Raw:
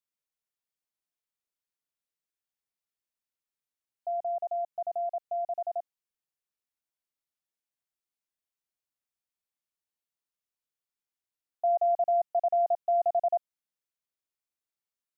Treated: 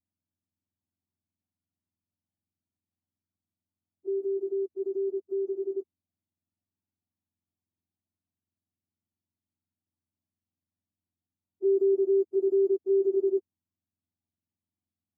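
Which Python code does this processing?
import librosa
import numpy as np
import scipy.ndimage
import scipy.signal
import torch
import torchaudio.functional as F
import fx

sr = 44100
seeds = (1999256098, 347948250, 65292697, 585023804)

y = fx.octave_mirror(x, sr, pivot_hz=520.0)
y = fx.fixed_phaser(y, sr, hz=470.0, stages=6)
y = y * librosa.db_to_amplitude(8.0)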